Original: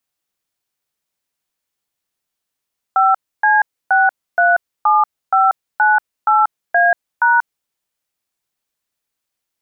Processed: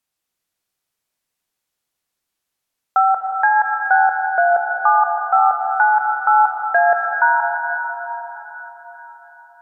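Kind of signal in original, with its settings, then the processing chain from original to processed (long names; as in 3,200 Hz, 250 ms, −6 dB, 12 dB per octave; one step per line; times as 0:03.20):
touch tones "5C637598A#", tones 186 ms, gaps 287 ms, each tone −12 dBFS
treble cut that deepens with the level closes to 1,200 Hz, closed at −9.5 dBFS
dense smooth reverb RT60 4.5 s, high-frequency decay 0.8×, pre-delay 110 ms, DRR 2.5 dB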